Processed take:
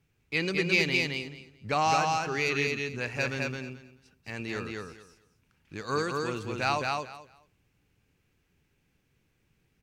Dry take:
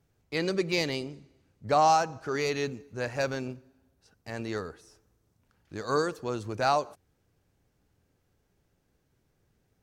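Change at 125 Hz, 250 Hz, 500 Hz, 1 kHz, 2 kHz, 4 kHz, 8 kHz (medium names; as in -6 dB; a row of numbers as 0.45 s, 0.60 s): +2.0 dB, 0.0 dB, -3.0 dB, -2.0 dB, +6.5 dB, +3.0 dB, +0.5 dB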